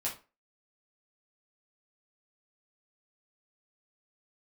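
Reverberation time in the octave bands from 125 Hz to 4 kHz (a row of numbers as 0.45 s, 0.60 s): 0.25 s, 0.30 s, 0.35 s, 0.30 s, 0.30 s, 0.25 s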